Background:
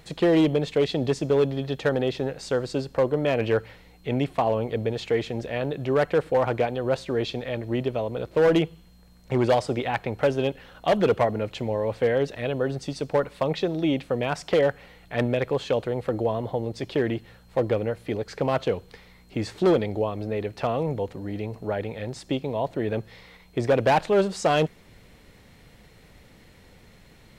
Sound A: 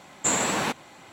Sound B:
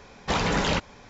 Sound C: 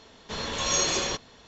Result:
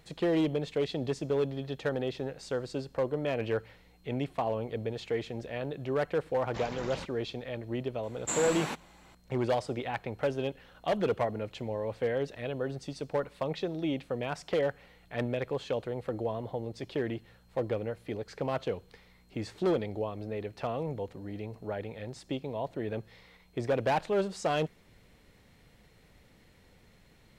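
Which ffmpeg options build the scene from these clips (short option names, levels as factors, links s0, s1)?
-filter_complex "[0:a]volume=0.398[s0];[1:a]aresample=32000,aresample=44100[s1];[2:a]atrim=end=1.09,asetpts=PTS-STARTPTS,volume=0.141,afade=t=in:d=0.004:c=hsin,afade=t=out:st=1.086:d=0.004:c=hsin,adelay=276066S[s2];[s1]atrim=end=1.12,asetpts=PTS-STARTPTS,volume=0.335,afade=t=in:d=0.004:c=hsin,afade=t=out:st=1.116:d=0.004:c=hsin,adelay=8030[s3];[s0][s2][s3]amix=inputs=3:normalize=0"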